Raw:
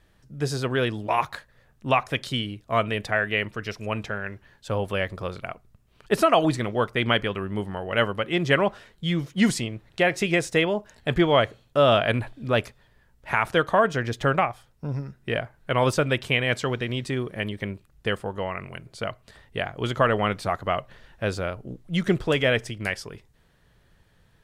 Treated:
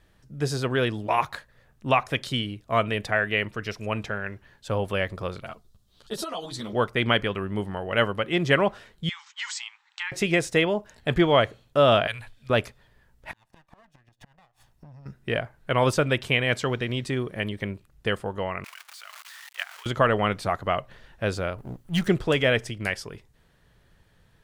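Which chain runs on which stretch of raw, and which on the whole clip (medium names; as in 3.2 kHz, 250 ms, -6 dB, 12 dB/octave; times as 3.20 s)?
5.44–6.73 s: resonant high shelf 3 kHz +6.5 dB, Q 3 + compression 8:1, threshold -25 dBFS + three-phase chorus
9.09–10.12 s: brick-wall FIR band-pass 780–8200 Hz + compression 2.5:1, threshold -30 dBFS
12.07–12.50 s: amplifier tone stack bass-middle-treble 10-0-10 + hum notches 50/100/150/200/250/300/350/400/450/500 Hz
13.31–15.06 s: comb filter that takes the minimum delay 1.1 ms + inverted gate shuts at -19 dBFS, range -35 dB + compression 12:1, threshold -44 dBFS
18.64–19.86 s: jump at every zero crossing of -30.5 dBFS + high-pass 1.1 kHz 24 dB/octave + level held to a coarse grid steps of 15 dB
21.58–22.08 s: comb filter that takes the minimum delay 0.66 ms + treble shelf 11 kHz +11.5 dB
whole clip: none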